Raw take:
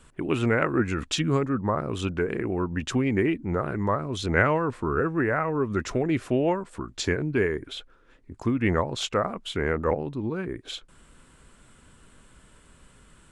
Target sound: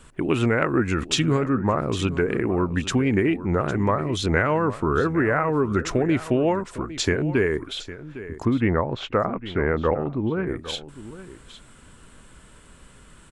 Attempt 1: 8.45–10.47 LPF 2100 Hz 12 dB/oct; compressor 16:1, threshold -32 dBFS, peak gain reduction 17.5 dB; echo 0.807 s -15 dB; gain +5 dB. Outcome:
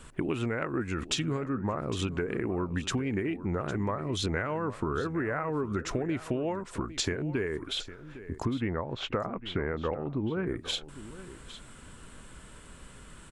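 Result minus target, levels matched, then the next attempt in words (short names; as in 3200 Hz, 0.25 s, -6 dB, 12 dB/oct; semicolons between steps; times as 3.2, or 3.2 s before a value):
compressor: peak gain reduction +11 dB
8.45–10.47 LPF 2100 Hz 12 dB/oct; compressor 16:1, threshold -20.5 dBFS, peak gain reduction 7 dB; echo 0.807 s -15 dB; gain +5 dB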